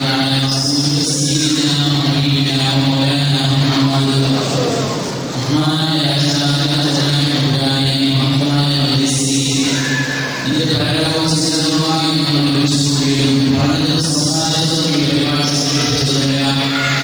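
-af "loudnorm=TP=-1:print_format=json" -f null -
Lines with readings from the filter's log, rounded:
"input_i" : "-14.2",
"input_tp" : "-2.7",
"input_lra" : "0.9",
"input_thresh" : "-24.2",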